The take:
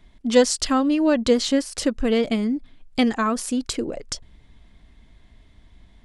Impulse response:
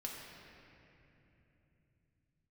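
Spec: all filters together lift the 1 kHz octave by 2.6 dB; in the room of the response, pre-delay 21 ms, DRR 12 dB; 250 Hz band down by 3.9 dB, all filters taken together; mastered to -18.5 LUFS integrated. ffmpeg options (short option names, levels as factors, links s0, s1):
-filter_complex "[0:a]equalizer=f=250:t=o:g=-4.5,equalizer=f=1000:t=o:g=3.5,asplit=2[s0][s1];[1:a]atrim=start_sample=2205,adelay=21[s2];[s1][s2]afir=irnorm=-1:irlink=0,volume=0.266[s3];[s0][s3]amix=inputs=2:normalize=0,volume=1.68"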